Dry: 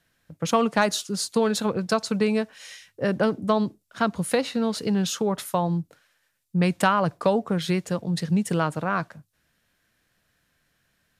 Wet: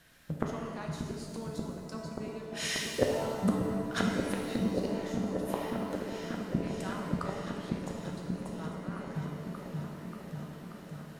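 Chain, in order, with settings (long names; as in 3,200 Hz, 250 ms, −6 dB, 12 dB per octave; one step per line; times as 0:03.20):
gate with flip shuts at −21 dBFS, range −31 dB
echo whose low-pass opens from repeat to repeat 584 ms, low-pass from 200 Hz, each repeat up 1 octave, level 0 dB
reverb with rising layers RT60 1.7 s, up +7 semitones, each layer −8 dB, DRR 0.5 dB
level +7 dB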